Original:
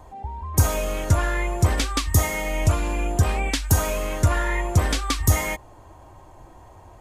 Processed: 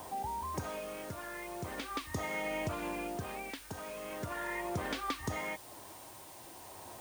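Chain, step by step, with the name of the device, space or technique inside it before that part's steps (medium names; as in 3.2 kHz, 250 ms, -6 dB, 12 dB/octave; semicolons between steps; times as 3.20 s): medium wave at night (band-pass 170–3600 Hz; compression, threshold -36 dBFS, peak gain reduction 15 dB; tremolo 0.4 Hz, depth 59%; whistle 9 kHz -62 dBFS; white noise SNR 14 dB); trim +2 dB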